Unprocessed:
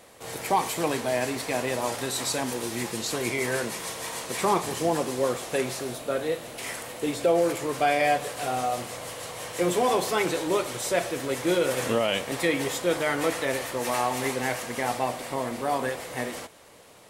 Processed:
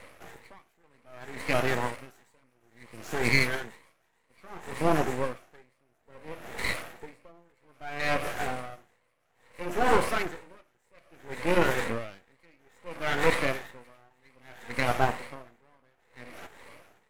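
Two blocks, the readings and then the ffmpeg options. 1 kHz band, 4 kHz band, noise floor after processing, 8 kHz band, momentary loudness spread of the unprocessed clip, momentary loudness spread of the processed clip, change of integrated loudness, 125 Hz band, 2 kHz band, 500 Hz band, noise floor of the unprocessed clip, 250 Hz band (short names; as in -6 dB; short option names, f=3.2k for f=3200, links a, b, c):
-5.0 dB, -6.5 dB, -71 dBFS, -13.0 dB, 9 LU, 22 LU, -2.0 dB, -0.5 dB, -0.5 dB, -6.5 dB, -42 dBFS, -5.5 dB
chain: -af "afftfilt=real='re*pow(10,9/40*sin(2*PI*(0.97*log(max(b,1)*sr/1024/100)/log(2)-(2.1)*(pts-256)/sr)))':imag='im*pow(10,9/40*sin(2*PI*(0.97*log(max(b,1)*sr/1024/100)/log(2)-(2.1)*(pts-256)/sr)))':win_size=1024:overlap=0.75,highshelf=f=2.7k:t=q:w=3:g=-8,aeval=exprs='max(val(0),0)':c=same,aeval=exprs='val(0)*pow(10,-39*(0.5-0.5*cos(2*PI*0.6*n/s))/20)':c=same,volume=4.5dB"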